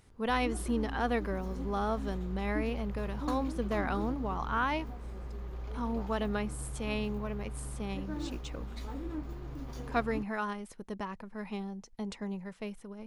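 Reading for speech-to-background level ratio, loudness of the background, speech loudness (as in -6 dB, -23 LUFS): 5.0 dB, -41.0 LUFS, -36.0 LUFS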